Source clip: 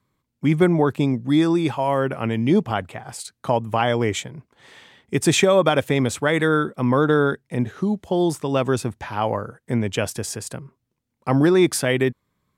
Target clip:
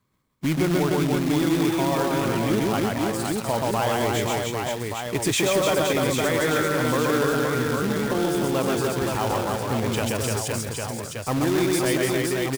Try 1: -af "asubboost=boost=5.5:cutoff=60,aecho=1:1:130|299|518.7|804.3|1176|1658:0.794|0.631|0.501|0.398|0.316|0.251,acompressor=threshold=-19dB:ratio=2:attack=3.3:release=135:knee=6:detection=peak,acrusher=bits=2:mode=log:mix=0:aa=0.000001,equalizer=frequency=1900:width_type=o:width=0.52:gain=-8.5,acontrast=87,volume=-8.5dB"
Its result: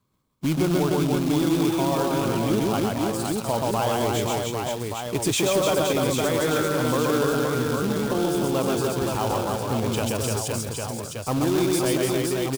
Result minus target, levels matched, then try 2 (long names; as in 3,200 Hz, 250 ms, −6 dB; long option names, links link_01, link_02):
2,000 Hz band −4.0 dB
-af "asubboost=boost=5.5:cutoff=60,aecho=1:1:130|299|518.7|804.3|1176|1658:0.794|0.631|0.501|0.398|0.316|0.251,acompressor=threshold=-19dB:ratio=2:attack=3.3:release=135:knee=6:detection=peak,acrusher=bits=2:mode=log:mix=0:aa=0.000001,acontrast=87,volume=-8.5dB"